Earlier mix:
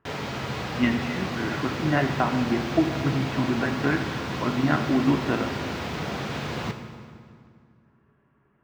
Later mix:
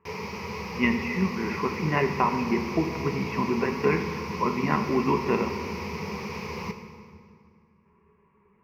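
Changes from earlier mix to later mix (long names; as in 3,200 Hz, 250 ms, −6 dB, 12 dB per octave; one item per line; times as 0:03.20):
background −6.5 dB
master: add EQ curve with evenly spaced ripples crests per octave 0.83, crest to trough 16 dB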